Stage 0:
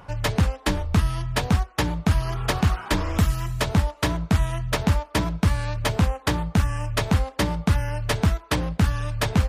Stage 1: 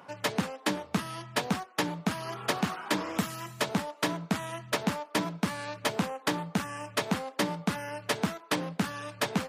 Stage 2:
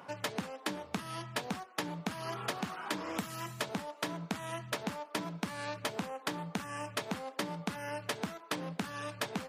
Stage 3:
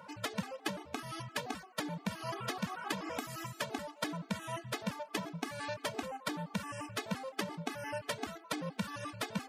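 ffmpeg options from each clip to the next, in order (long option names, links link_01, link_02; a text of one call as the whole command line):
ffmpeg -i in.wav -af "highpass=frequency=180:width=0.5412,highpass=frequency=180:width=1.3066,volume=-4dB" out.wav
ffmpeg -i in.wav -af "acompressor=threshold=-33dB:ratio=6" out.wav
ffmpeg -i in.wav -af "afftfilt=real='re*gt(sin(2*PI*5.8*pts/sr)*(1-2*mod(floor(b*sr/1024/220),2)),0)':imag='im*gt(sin(2*PI*5.8*pts/sr)*(1-2*mod(floor(b*sr/1024/220),2)),0)':win_size=1024:overlap=0.75,volume=2.5dB" out.wav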